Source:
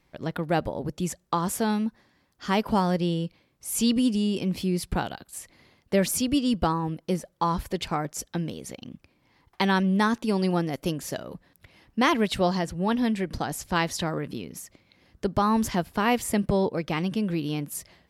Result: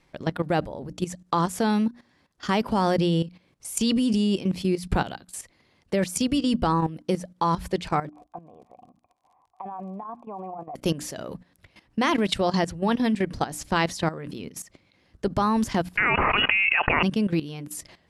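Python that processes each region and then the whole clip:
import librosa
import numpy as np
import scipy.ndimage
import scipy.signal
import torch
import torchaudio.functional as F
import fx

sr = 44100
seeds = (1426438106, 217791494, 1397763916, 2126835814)

y = fx.formant_cascade(x, sr, vowel='a', at=(8.08, 10.75), fade=0.02)
y = fx.dmg_crackle(y, sr, seeds[0], per_s=34.0, level_db=-64.0, at=(8.08, 10.75), fade=0.02)
y = fx.over_compress(y, sr, threshold_db=-39.0, ratio=-0.5, at=(8.08, 10.75), fade=0.02)
y = fx.chain(y, sr, fx.highpass(hz=1000.0, slope=12),
    fx.freq_invert(carrier_hz=3100),
    fx.env_flatten(amount_pct=100), at=(15.97, 17.03))
y = scipy.signal.sosfilt(scipy.signal.butter(4, 11000.0, 'lowpass', fs=sr, output='sos'), y)
y = fx.hum_notches(y, sr, base_hz=60, count=5)
y = fx.level_steps(y, sr, step_db=14)
y = F.gain(torch.from_numpy(y), 6.5).numpy()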